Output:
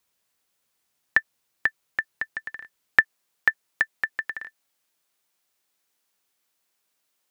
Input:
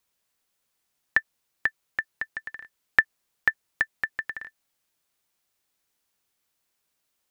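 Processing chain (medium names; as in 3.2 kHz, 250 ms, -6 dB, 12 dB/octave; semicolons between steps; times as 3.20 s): high-pass 57 Hz 6 dB/octave, from 3.00 s 220 Hz; trim +2 dB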